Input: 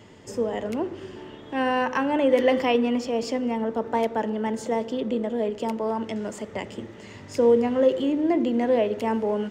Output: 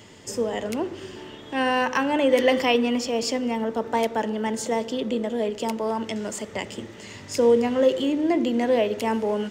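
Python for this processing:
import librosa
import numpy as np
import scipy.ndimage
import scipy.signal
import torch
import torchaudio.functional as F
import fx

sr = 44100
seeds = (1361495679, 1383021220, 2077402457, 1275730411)

y = fx.high_shelf(x, sr, hz=2700.0, db=10.5)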